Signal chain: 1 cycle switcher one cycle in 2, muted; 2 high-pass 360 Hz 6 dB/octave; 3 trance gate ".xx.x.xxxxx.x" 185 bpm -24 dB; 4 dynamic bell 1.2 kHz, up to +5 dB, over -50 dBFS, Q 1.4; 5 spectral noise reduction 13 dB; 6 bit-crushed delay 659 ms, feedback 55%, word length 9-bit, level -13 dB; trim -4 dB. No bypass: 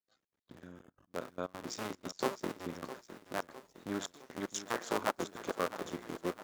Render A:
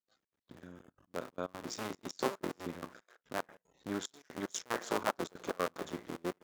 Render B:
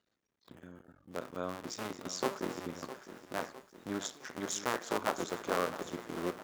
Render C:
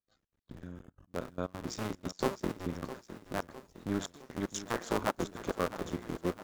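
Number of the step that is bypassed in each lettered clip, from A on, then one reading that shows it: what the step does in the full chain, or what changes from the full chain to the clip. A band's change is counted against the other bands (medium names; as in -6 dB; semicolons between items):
6, momentary loudness spread change +1 LU; 3, 8 kHz band +2.0 dB; 2, 125 Hz band +8.5 dB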